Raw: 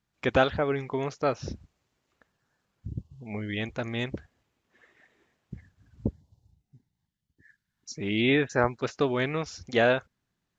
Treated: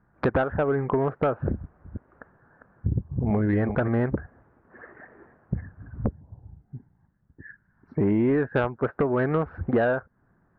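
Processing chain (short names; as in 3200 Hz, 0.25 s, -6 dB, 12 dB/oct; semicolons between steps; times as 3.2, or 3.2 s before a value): 1.53–3.88 reverse delay 0.222 s, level -8 dB; elliptic low-pass 1600 Hz, stop band 80 dB; compressor 8:1, threshold -37 dBFS, peak gain reduction 20 dB; sine folder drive 5 dB, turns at -24 dBFS; gain +9 dB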